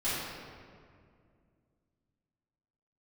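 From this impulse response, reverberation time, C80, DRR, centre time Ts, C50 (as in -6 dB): 2.2 s, -0.5 dB, -14.0 dB, 129 ms, -3.0 dB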